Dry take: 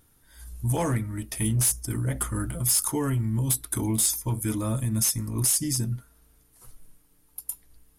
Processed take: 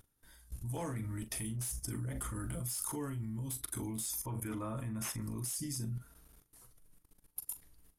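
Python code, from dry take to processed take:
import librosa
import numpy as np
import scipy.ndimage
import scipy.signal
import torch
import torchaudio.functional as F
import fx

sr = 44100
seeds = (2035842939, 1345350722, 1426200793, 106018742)

y = fx.curve_eq(x, sr, hz=(170.0, 1200.0, 2900.0, 4100.0), db=(0, 9, 3, -9), at=(4.24, 5.22))
y = fx.level_steps(y, sr, step_db=20)
y = fx.doubler(y, sr, ms=41.0, db=-11)
y = y * 10.0 ** (1.0 / 20.0)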